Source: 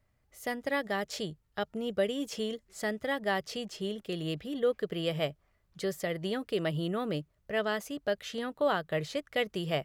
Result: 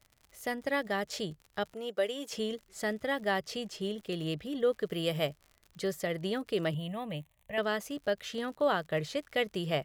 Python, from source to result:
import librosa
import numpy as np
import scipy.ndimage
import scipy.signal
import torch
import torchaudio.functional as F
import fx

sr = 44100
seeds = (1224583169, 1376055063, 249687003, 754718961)

y = fx.highpass(x, sr, hz=410.0, slope=12, at=(1.74, 2.32))
y = fx.high_shelf(y, sr, hz=8800.0, db=11.0, at=(4.86, 5.27))
y = fx.dmg_crackle(y, sr, seeds[0], per_s=77.0, level_db=-44.0)
y = fx.fixed_phaser(y, sr, hz=1400.0, stages=6, at=(6.74, 7.58))